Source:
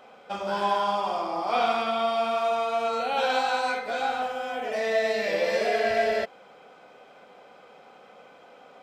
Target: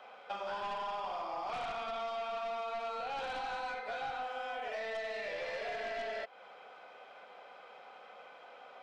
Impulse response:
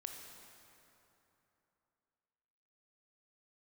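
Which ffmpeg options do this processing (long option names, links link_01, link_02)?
-filter_complex "[0:a]acrossover=split=520 4900:gain=0.2 1 0.224[link_01][link_02][link_03];[link_01][link_02][link_03]amix=inputs=3:normalize=0,aeval=exprs='0.188*(cos(1*acos(clip(val(0)/0.188,-1,1)))-cos(1*PI/2))+0.0422*(cos(2*acos(clip(val(0)/0.188,-1,1)))-cos(2*PI/2))+0.0531*(cos(5*acos(clip(val(0)/0.188,-1,1)))-cos(5*PI/2))':channel_layout=same,acrossover=split=820|4300[link_04][link_05][link_06];[link_04]acompressor=threshold=-34dB:ratio=4[link_07];[link_05]acompressor=threshold=-35dB:ratio=4[link_08];[link_06]acompressor=threshold=-55dB:ratio=4[link_09];[link_07][link_08][link_09]amix=inputs=3:normalize=0,volume=-8dB"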